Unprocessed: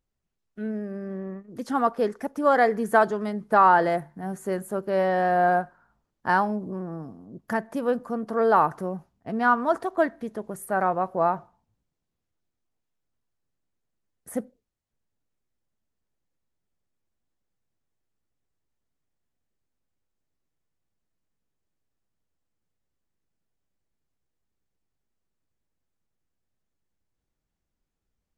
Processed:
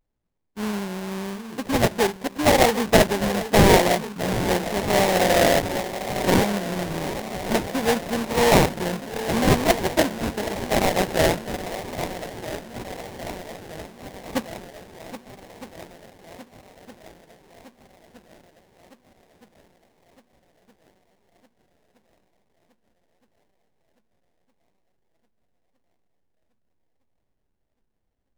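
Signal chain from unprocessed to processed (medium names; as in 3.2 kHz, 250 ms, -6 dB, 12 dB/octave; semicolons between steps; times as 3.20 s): shuffle delay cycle 1264 ms, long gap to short 1.5:1, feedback 59%, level -12 dB; sample-rate reducer 1.3 kHz, jitter 20%; vibrato 0.86 Hz 81 cents; trim +3 dB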